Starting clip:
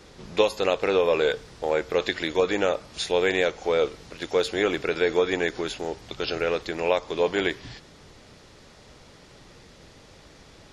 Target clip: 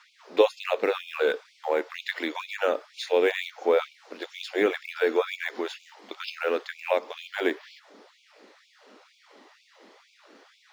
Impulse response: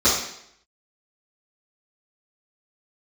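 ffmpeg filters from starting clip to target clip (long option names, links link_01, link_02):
-filter_complex "[0:a]aemphasis=mode=reproduction:type=75fm,acrossover=split=190|1100[link_01][link_02][link_03];[link_03]acrusher=bits=6:mode=log:mix=0:aa=0.000001[link_04];[link_01][link_02][link_04]amix=inputs=3:normalize=0,aphaser=in_gain=1:out_gain=1:delay=1.1:decay=0.22:speed=0.26:type=triangular,afftfilt=real='re*gte(b*sr/1024,200*pow(2200/200,0.5+0.5*sin(2*PI*2.1*pts/sr)))':imag='im*gte(b*sr/1024,200*pow(2200/200,0.5+0.5*sin(2*PI*2.1*pts/sr)))':win_size=1024:overlap=0.75"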